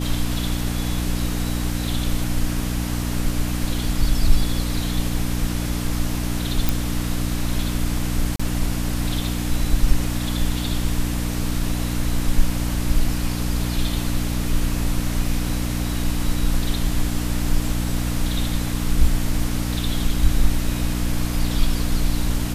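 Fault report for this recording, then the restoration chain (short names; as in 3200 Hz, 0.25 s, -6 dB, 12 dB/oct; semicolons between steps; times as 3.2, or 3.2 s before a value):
hum 60 Hz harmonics 5 -25 dBFS
6.69 pop
8.36–8.39 gap 35 ms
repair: de-click; de-hum 60 Hz, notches 5; interpolate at 8.36, 35 ms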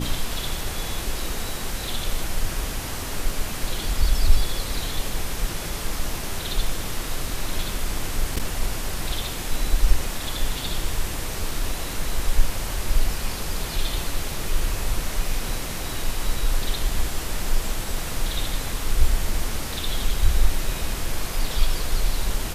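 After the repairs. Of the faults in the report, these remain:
none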